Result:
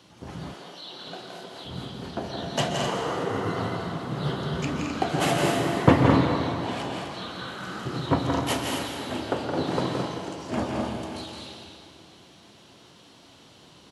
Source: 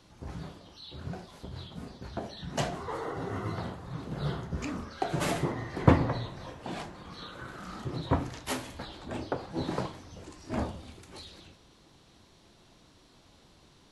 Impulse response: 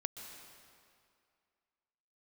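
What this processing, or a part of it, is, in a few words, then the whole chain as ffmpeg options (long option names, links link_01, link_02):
stadium PA: -filter_complex "[0:a]highpass=120,equalizer=frequency=3000:width_type=o:width=0.24:gain=6,aecho=1:1:169.1|215.7|256.6:0.501|0.447|0.398[link_01];[1:a]atrim=start_sample=2205[link_02];[link_01][link_02]afir=irnorm=-1:irlink=0,asettb=1/sr,asplit=3[link_03][link_04][link_05];[link_03]atrim=end=0.544[link_06];[link_04]atrim=start=0.54:end=1.65,asetpts=PTS-STARTPTS,afade=type=in:duration=0.004:curve=qsin,afade=type=out:start_time=1.106:duration=0.004:curve=qsin,highpass=340[link_07];[link_05]atrim=start=1.646[link_08];[link_06][link_07]acrossfade=duration=0.004:curve1=hsin:curve2=qsin[link_09];[link_09][link_08]acrossfade=duration=0.004:curve1=qsin:curve2=hsin,volume=6.5dB"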